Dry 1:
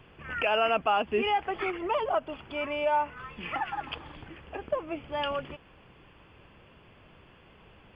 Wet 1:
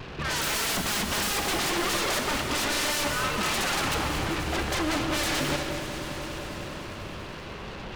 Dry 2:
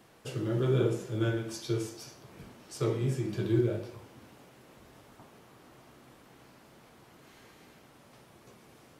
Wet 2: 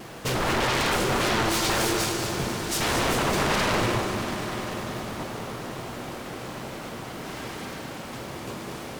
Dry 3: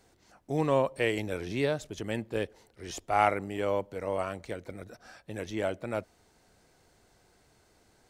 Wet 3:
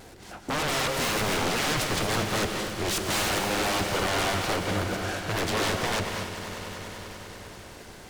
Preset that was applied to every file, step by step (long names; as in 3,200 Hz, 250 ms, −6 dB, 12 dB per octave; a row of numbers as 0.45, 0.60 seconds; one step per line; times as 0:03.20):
soft clipping −22 dBFS
pitch vibrato 1.2 Hz 18 cents
wave folding −39 dBFS
echo that builds up and dies away 98 ms, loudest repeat 5, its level −17 dB
reverb whose tail is shaped and stops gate 260 ms rising, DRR 4 dB
short delay modulated by noise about 1,200 Hz, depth 0.043 ms
loudness normalisation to −27 LKFS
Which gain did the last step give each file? +15.5, +18.5, +16.5 decibels